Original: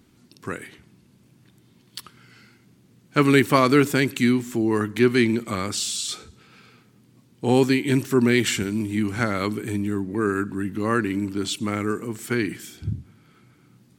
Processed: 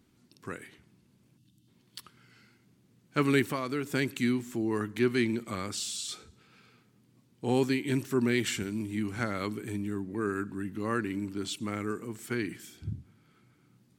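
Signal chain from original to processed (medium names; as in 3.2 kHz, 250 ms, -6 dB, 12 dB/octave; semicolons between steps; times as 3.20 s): 1.38–1.68 s: time-frequency box 340–2600 Hz -15 dB; 3.48–3.92 s: compression 2:1, threshold -26 dBFS, peak gain reduction 8 dB; trim -8.5 dB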